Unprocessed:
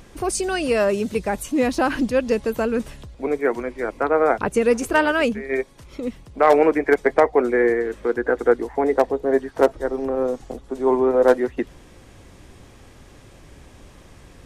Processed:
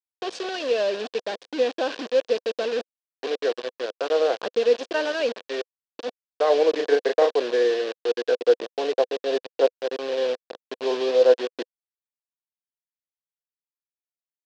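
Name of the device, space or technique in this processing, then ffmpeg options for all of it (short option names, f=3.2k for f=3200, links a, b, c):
hand-held game console: -filter_complex "[0:a]acrusher=bits=3:mix=0:aa=0.000001,highpass=470,equalizer=f=500:t=q:w=4:g=7,equalizer=f=880:t=q:w=4:g=-8,equalizer=f=1.3k:t=q:w=4:g=-10,equalizer=f=2.1k:t=q:w=4:g=-10,lowpass=f=4.7k:w=0.5412,lowpass=f=4.7k:w=1.3066,asettb=1/sr,asplit=3[a][b][c];[a]atrim=end=6.704[d];[b]atrim=start=6.7:end=7.34,asetpts=PTS-STARTPTS,afade=t=in:d=0.004:c=qsin,afade=t=out:st=0.636:d=0.004:c=qsin,asplit=2[e][f];[f]adelay=35,volume=-2.5dB[g];[e][g]amix=inputs=2:normalize=0,atrim=end_sample=28224[h];[c]atrim=start=7.336[i];[d][h]acrossfade=d=0.004:c1=hsin:c2=qsin[j];[j][i]acrossfade=d=0.004:c1=qsin:c2=hsin,volume=-3.5dB"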